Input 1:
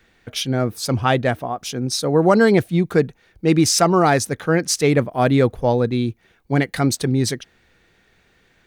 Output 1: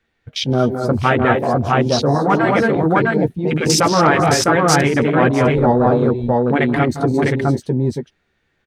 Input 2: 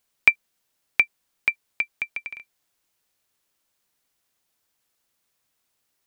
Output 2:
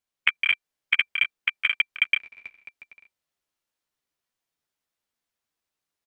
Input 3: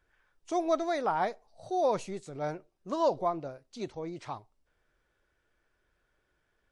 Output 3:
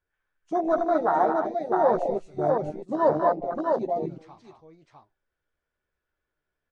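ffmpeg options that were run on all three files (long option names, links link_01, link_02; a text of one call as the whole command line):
ffmpeg -i in.wav -filter_complex "[0:a]asplit=2[link_01][link_02];[link_02]adelay=13,volume=-7.5dB[link_03];[link_01][link_03]amix=inputs=2:normalize=0,asplit=2[link_04][link_05];[link_05]aecho=0:1:158|184|217|227|251|655:0.188|0.168|0.422|0.251|0.133|0.708[link_06];[link_04][link_06]amix=inputs=2:normalize=0,afftfilt=real='re*lt(hypot(re,im),1.26)':imag='im*lt(hypot(re,im),1.26)':win_size=1024:overlap=0.75,asplit=2[link_07][link_08];[link_08]acontrast=64,volume=-0.5dB[link_09];[link_07][link_09]amix=inputs=2:normalize=0,afwtdn=0.158,highshelf=frequency=6900:gain=-7.5,volume=-4.5dB" out.wav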